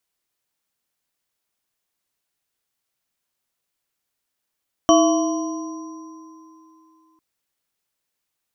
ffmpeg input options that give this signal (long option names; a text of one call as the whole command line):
ffmpeg -f lavfi -i "aevalsrc='0.224*pow(10,-3*t/2.94)*sin(2*PI*320*t)+0.251*pow(10,-3*t/1.57)*sin(2*PI*674*t)+0.0562*pow(10,-3*t/3.83)*sin(2*PI*1030*t)+0.15*pow(10,-3*t/0.8)*sin(2*PI*1130*t)+0.0668*pow(10,-3*t/0.91)*sin(2*PI*3060*t)+0.0708*pow(10,-3*t/2.26)*sin(2*PI*5750*t)':duration=2.3:sample_rate=44100" out.wav